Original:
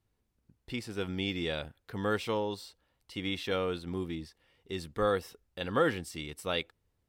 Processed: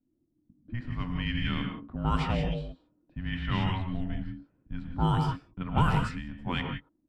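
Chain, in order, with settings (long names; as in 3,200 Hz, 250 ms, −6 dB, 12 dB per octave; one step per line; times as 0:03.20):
reverb whose tail is shaped and stops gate 200 ms rising, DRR 2.5 dB
frequency shifter −360 Hz
low-pass that shuts in the quiet parts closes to 430 Hz, open at −22 dBFS
level +2.5 dB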